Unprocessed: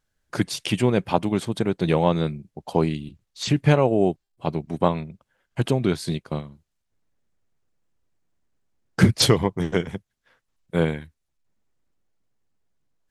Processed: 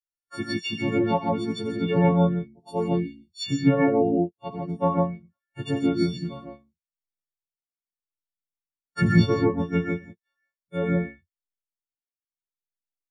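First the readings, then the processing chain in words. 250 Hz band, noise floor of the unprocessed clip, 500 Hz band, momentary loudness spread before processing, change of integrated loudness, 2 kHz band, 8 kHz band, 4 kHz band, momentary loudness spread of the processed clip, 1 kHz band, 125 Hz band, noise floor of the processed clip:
+0.5 dB, −77 dBFS, −2.0 dB, 15 LU, −1.5 dB, −1.5 dB, below −10 dB, −7.0 dB, 15 LU, −1.5 dB, −2.5 dB, below −85 dBFS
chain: every partial snapped to a pitch grid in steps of 4 semitones
treble cut that deepens with the level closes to 1,700 Hz, closed at −13.5 dBFS
reverb whose tail is shaped and stops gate 180 ms rising, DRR −0.5 dB
every bin expanded away from the loudest bin 1.5 to 1
level −3.5 dB

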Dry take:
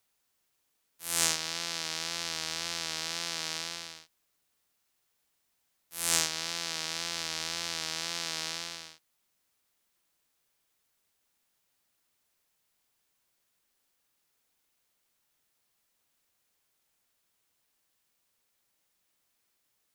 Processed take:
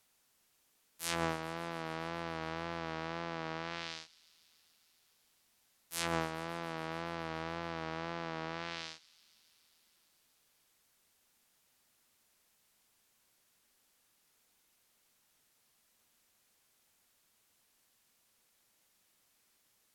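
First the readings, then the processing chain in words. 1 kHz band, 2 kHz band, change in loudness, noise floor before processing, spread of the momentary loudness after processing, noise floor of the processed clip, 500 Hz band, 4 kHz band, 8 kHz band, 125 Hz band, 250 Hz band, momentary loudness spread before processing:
+2.5 dB, −4.0 dB, −8.0 dB, −77 dBFS, 7 LU, −74 dBFS, +4.5 dB, −13.0 dB, −16.5 dB, +5.0 dB, +5.0 dB, 14 LU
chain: treble cut that deepens with the level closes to 1,100 Hz, closed at −31.5 dBFS
parametric band 220 Hz +4 dB 0.27 octaves
delay with a high-pass on its return 141 ms, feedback 82%, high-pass 4,300 Hz, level −17.5 dB
level +4.5 dB

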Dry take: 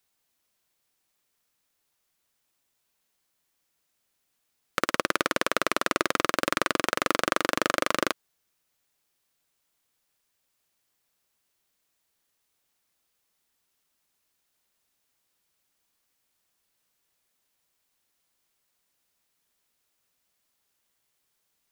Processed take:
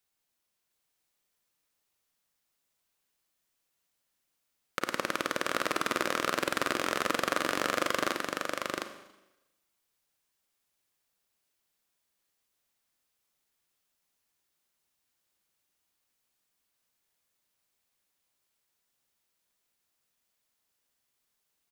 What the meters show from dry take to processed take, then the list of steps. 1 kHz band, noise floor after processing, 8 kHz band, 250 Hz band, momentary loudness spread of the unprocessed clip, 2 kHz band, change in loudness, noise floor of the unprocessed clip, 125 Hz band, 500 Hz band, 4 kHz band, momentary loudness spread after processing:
−3.5 dB, −80 dBFS, −3.5 dB, −4.0 dB, 4 LU, −3.5 dB, −4.0 dB, −77 dBFS, −3.5 dB, −3.5 dB, −3.5 dB, 6 LU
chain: single-tap delay 712 ms −3 dB
four-comb reverb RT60 0.98 s, combs from 31 ms, DRR 8.5 dB
level −6 dB

